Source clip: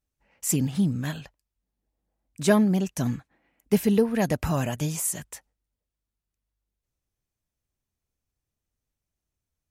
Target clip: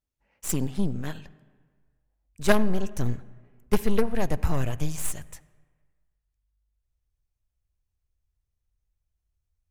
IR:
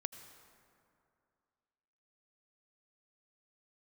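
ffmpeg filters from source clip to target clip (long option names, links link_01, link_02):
-filter_complex "[0:a]aeval=exprs='0.422*(cos(1*acos(clip(val(0)/0.422,-1,1)))-cos(1*PI/2))+0.0841*(cos(3*acos(clip(val(0)/0.422,-1,1)))-cos(3*PI/2))+0.0335*(cos(6*acos(clip(val(0)/0.422,-1,1)))-cos(6*PI/2))+0.0376*(cos(8*acos(clip(val(0)/0.422,-1,1)))-cos(8*PI/2))':channel_layout=same,asplit=2[link_01][link_02];[1:a]atrim=start_sample=2205,asetrate=70560,aresample=44100,highshelf=frequency=4400:gain=-10[link_03];[link_02][link_03]afir=irnorm=-1:irlink=0,volume=0.5dB[link_04];[link_01][link_04]amix=inputs=2:normalize=0,asubboost=boost=7.5:cutoff=76"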